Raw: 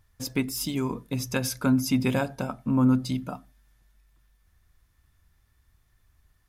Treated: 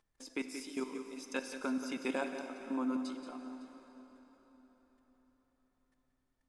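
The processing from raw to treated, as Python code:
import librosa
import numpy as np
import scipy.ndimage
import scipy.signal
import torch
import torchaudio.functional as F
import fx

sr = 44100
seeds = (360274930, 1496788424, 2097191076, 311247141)

p1 = scipy.signal.sosfilt(scipy.signal.ellip(3, 1.0, 40, [300.0, 9200.0], 'bandpass', fs=sr, output='sos'), x)
p2 = fx.level_steps(p1, sr, step_db=15)
p3 = fx.dmg_noise_colour(p2, sr, seeds[0], colour='brown', level_db=-76.0)
p4 = p3 + fx.echo_multitap(p3, sr, ms=(176, 183, 557), db=(-13.0, -13.0, -19.5), dry=0)
p5 = fx.rev_plate(p4, sr, seeds[1], rt60_s=4.7, hf_ratio=0.75, predelay_ms=0, drr_db=7.5)
y = p5 * librosa.db_to_amplitude(-4.5)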